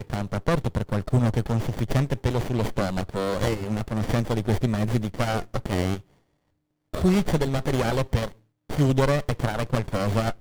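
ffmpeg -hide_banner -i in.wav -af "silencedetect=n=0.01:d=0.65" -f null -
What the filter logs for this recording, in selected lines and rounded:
silence_start: 6.01
silence_end: 6.94 | silence_duration: 0.93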